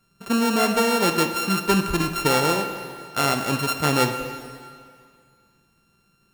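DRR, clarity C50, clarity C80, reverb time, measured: 7.0 dB, 8.0 dB, 9.0 dB, 2.1 s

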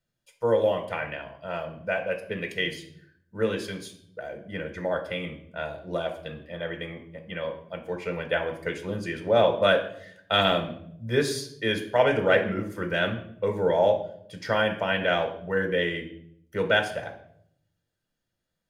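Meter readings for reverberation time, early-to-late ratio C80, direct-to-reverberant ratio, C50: 0.70 s, 13.5 dB, 4.5 dB, 10.0 dB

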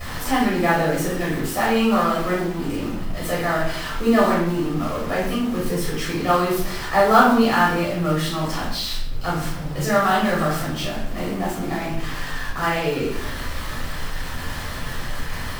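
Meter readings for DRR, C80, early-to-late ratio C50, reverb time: -7.0 dB, 6.5 dB, 2.5 dB, 0.65 s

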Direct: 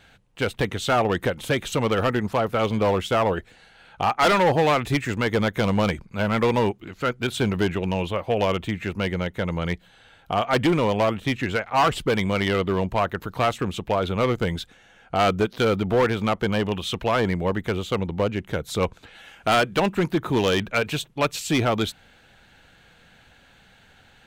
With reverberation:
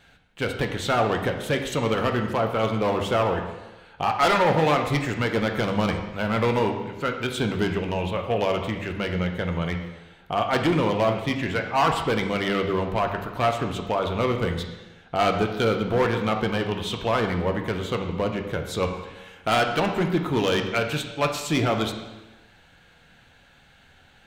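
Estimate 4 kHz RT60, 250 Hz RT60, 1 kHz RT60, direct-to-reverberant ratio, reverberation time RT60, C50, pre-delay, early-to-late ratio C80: 1.0 s, 1.1 s, 1.1 s, 3.5 dB, 1.1 s, 6.5 dB, 5 ms, 8.5 dB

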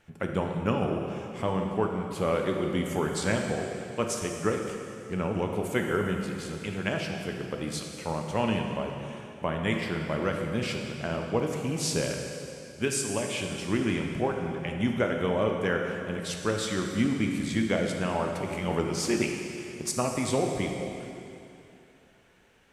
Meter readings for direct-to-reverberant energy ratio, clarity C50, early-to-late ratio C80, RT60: 2.0 dB, 3.5 dB, 4.5 dB, 2.8 s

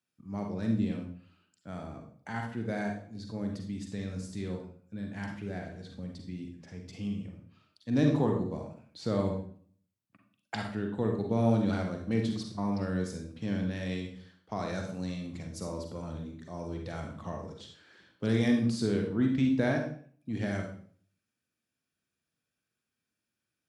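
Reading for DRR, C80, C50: 2.0 dB, 9.0 dB, 5.0 dB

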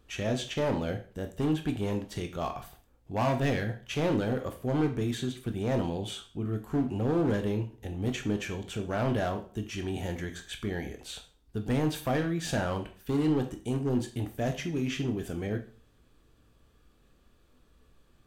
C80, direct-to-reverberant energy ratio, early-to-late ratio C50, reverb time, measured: 17.0 dB, 5.5 dB, 11.5 dB, 0.45 s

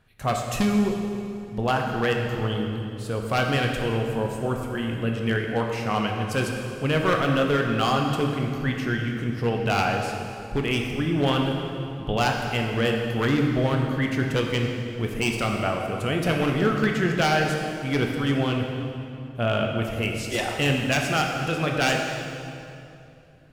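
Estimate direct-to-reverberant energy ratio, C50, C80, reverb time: 1.0 dB, 3.0 dB, 4.0 dB, 2.7 s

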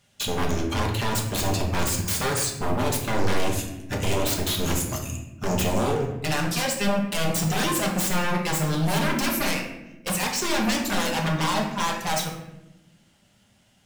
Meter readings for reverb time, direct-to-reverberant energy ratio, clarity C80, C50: 1.0 s, -0.5 dB, 8.0 dB, 5.0 dB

